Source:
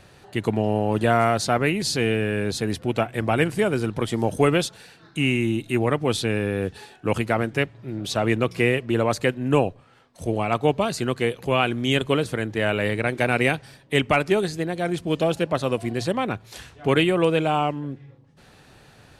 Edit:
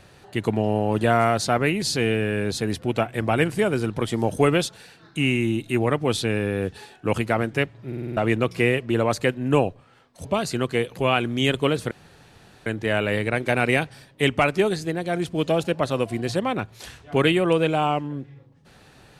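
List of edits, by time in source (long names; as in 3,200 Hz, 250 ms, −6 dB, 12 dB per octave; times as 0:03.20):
0:07.87: stutter in place 0.05 s, 6 plays
0:10.25–0:10.72: remove
0:12.38: splice in room tone 0.75 s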